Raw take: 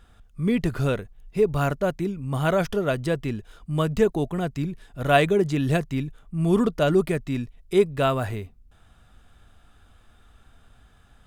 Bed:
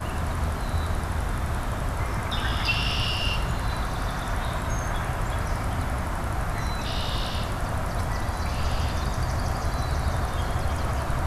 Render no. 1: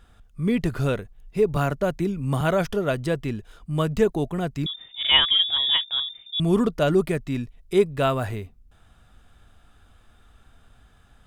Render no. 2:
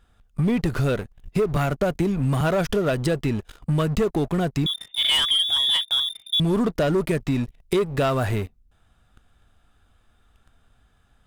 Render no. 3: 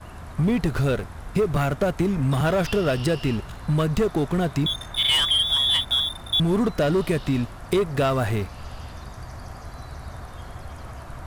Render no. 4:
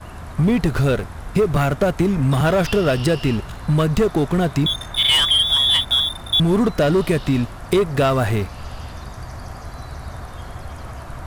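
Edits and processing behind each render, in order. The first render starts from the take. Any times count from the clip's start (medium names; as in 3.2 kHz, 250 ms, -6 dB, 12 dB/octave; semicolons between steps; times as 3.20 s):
1.56–2.41 s: three bands compressed up and down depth 70%; 4.66–6.40 s: frequency inversion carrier 3.6 kHz
waveshaping leveller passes 3; compression 5:1, threshold -20 dBFS, peak gain reduction 11.5 dB
add bed -11 dB
trim +4.5 dB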